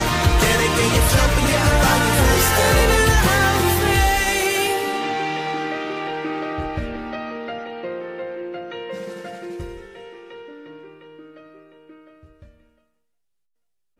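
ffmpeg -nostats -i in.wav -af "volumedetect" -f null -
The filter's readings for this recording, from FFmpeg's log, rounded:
mean_volume: -20.7 dB
max_volume: -5.0 dB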